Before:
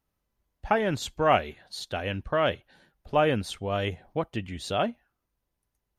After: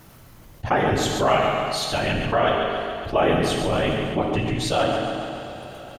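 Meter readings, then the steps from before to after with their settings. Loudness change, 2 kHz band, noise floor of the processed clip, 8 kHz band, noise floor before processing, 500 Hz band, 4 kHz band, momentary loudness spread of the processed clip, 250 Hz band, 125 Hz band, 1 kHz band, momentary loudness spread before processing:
+5.5 dB, +6.5 dB, -47 dBFS, +9.5 dB, -82 dBFS, +6.0 dB, +8.0 dB, 10 LU, +7.5 dB, +7.5 dB, +6.0 dB, 11 LU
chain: whisperiser; feedback echo 0.139 s, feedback 45%, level -9 dB; two-slope reverb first 0.98 s, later 3.5 s, from -20 dB, DRR 3.5 dB; fast leveller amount 50%

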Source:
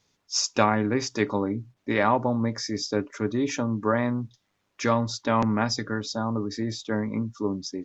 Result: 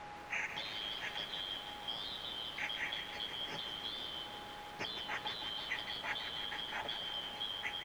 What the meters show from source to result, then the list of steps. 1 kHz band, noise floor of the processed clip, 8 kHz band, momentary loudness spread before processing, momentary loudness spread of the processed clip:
-16.5 dB, -49 dBFS, n/a, 8 LU, 3 LU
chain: four-band scrambler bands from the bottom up 3412; flange 0.43 Hz, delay 3.3 ms, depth 9.6 ms, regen +85%; HPF 89 Hz 24 dB/oct; whine 830 Hz -57 dBFS; limiter -19 dBFS, peak gain reduction 10 dB; compressor 16:1, threshold -35 dBFS, peak gain reduction 11 dB; comb 7.1 ms, depth 41%; requantised 8-bit, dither triangular; LPF 1800 Hz 12 dB/oct; lo-fi delay 0.162 s, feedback 80%, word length 11-bit, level -9 dB; gain +6.5 dB

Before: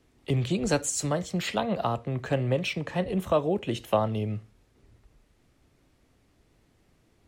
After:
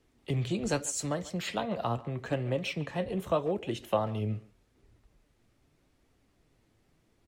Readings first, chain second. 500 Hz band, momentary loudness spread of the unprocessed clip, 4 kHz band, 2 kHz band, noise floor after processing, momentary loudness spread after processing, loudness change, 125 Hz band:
-4.5 dB, 4 LU, -4.5 dB, -4.5 dB, -70 dBFS, 4 LU, -4.5 dB, -4.5 dB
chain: flange 0.82 Hz, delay 2 ms, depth 7.6 ms, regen +68%; speakerphone echo 0.14 s, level -18 dB

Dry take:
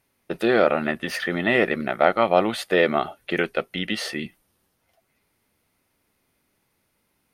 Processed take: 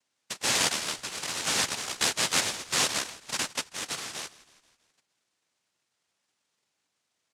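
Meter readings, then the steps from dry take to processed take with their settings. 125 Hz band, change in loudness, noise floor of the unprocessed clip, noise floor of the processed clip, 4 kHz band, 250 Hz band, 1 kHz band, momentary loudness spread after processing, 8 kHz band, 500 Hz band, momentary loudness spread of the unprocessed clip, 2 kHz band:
-10.5 dB, -5.0 dB, -72 dBFS, -80 dBFS, +4.0 dB, -16.5 dB, -10.0 dB, 10 LU, +16.0 dB, -19.0 dB, 8 LU, -7.0 dB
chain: noise vocoder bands 1; frequency-shifting echo 0.162 s, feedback 56%, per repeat -37 Hz, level -20 dB; gain -8 dB

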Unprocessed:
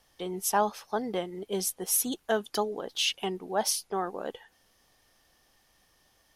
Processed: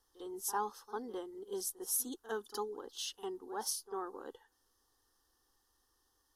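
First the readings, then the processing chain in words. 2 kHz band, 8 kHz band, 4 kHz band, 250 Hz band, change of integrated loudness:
-13.0 dB, -8.0 dB, -13.0 dB, -11.0 dB, -9.5 dB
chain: fixed phaser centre 630 Hz, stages 6; pre-echo 51 ms -15.5 dB; gain -7.5 dB

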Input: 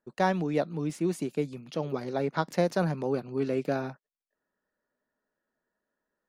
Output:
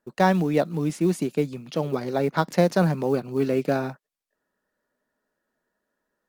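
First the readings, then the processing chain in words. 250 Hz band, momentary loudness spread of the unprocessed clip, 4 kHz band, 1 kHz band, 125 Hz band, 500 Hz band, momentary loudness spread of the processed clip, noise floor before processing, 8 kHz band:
+6.5 dB, 6 LU, +5.5 dB, +5.5 dB, +7.0 dB, +5.5 dB, 7 LU, under -85 dBFS, +6.0 dB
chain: dynamic EQ 190 Hz, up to +3 dB, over -40 dBFS, Q 3.5; short-mantissa float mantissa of 4-bit; gain +5.5 dB; Vorbis 192 kbps 48000 Hz

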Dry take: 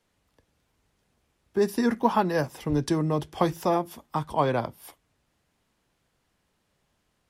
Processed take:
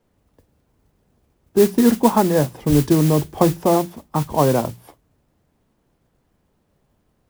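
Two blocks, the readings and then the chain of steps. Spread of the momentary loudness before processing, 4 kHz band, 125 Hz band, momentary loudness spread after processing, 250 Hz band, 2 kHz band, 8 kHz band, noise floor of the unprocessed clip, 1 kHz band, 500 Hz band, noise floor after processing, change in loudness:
8 LU, +7.5 dB, +10.5 dB, 8 LU, +10.0 dB, +2.5 dB, +13.5 dB, -74 dBFS, +5.0 dB, +8.5 dB, -67 dBFS, +8.5 dB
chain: tilt shelf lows +8.5 dB, about 1200 Hz; notches 60/120/180 Hz; modulation noise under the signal 16 dB; gain +2.5 dB

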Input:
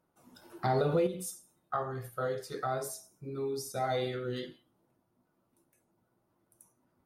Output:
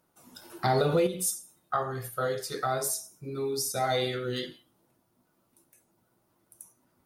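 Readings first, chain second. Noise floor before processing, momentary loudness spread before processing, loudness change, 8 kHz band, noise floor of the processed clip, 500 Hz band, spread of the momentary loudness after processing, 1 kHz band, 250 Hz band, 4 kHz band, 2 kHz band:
-77 dBFS, 13 LU, +4.5 dB, +11.5 dB, -72 dBFS, +3.5 dB, 10 LU, +4.5 dB, +3.0 dB, +9.5 dB, +6.0 dB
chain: high shelf 2300 Hz +9 dB; gain +3 dB

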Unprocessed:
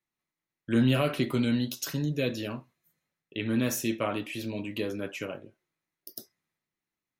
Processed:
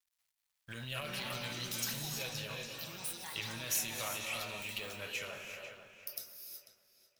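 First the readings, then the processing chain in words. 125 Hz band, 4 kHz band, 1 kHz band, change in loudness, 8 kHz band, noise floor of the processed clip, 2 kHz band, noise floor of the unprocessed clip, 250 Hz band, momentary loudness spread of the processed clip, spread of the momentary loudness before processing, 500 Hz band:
-14.5 dB, -1.0 dB, -6.5 dB, -9.0 dB, +1.5 dB, -84 dBFS, -3.0 dB, under -85 dBFS, -21.5 dB, 13 LU, 19 LU, -14.0 dB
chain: G.711 law mismatch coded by mu; bell 490 Hz +4.5 dB 1.7 oct; non-linear reverb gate 0.4 s rising, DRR 4.5 dB; limiter -19.5 dBFS, peak gain reduction 9.5 dB; passive tone stack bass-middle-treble 10-0-10; echoes that change speed 0.568 s, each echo +7 st, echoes 2, each echo -6 dB; darkening echo 0.494 s, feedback 30%, low-pass 4600 Hz, level -10 dB

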